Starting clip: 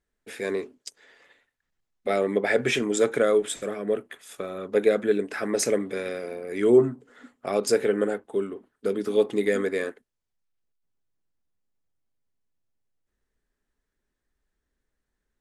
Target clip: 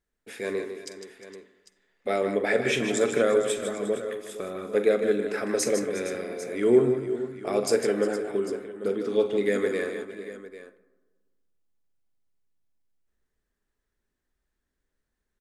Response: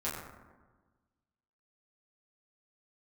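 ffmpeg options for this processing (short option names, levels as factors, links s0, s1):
-filter_complex "[0:a]asettb=1/sr,asplit=3[s0][s1][s2];[s0]atrim=end=8.884[s3];[s1]atrim=start=8.88:end=9.45,asetpts=PTS-STARTPTS,afade=t=in:d=0.004:c=qsin,afade=t=out:st=0.566:d=0.004:c=qsin,lowpass=6600[s4];[s2]atrim=start=9.446[s5];[s3][s4]acrossfade=d=0.004:c1=hsin:c2=qsin[s6];[s6][s5]acrossfade=d=0.004:c1=qsin:c2=hsin,aecho=1:1:43|153|354|357|462|798:0.237|0.398|0.1|0.133|0.188|0.178,asplit=2[s7][s8];[1:a]atrim=start_sample=2205,adelay=51[s9];[s8][s9]afir=irnorm=-1:irlink=0,volume=0.106[s10];[s7][s10]amix=inputs=2:normalize=0,volume=0.794"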